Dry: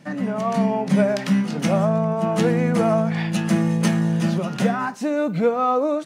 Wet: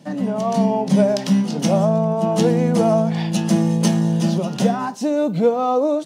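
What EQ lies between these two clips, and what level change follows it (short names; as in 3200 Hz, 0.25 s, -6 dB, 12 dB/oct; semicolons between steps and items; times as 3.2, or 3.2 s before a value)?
HPF 120 Hz; band shelf 1700 Hz -8.5 dB 1.3 oct; dynamic EQ 5600 Hz, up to +4 dB, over -49 dBFS, Q 2.7; +3.0 dB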